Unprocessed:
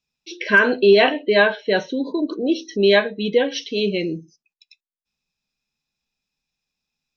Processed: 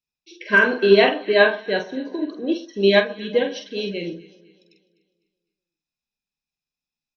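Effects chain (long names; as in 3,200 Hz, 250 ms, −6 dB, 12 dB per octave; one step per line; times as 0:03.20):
double-tracking delay 46 ms −5 dB
delay that swaps between a low-pass and a high-pass 126 ms, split 1,400 Hz, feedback 65%, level −12 dB
expander for the loud parts 1.5 to 1, over −30 dBFS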